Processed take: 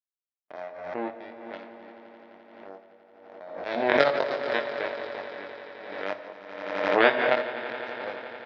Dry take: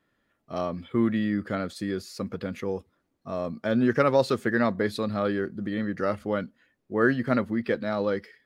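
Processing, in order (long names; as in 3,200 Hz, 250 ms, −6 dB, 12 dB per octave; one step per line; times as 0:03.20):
gate pattern ".x.xxxxx.xx" 150 BPM
power curve on the samples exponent 3
loudspeaker in its box 390–4,700 Hz, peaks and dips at 630 Hz +8 dB, 1,200 Hz −6 dB, 3,000 Hz −4 dB
double-tracking delay 21 ms −2.5 dB
echo that builds up and dies away 86 ms, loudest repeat 5, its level −17 dB
convolution reverb RT60 1.2 s, pre-delay 7 ms, DRR 9 dB
background raised ahead of every attack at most 45 dB per second
level +8 dB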